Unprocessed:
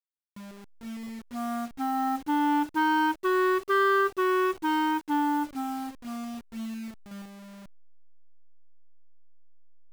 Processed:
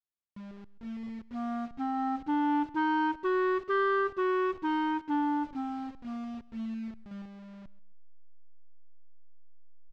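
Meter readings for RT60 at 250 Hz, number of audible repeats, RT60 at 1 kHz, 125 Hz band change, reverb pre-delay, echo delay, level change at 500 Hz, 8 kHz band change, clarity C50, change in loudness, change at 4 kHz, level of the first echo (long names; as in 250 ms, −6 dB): no reverb audible, 2, no reverb audible, can't be measured, no reverb audible, 134 ms, −3.0 dB, below −15 dB, no reverb audible, −4.0 dB, −8.0 dB, −21.5 dB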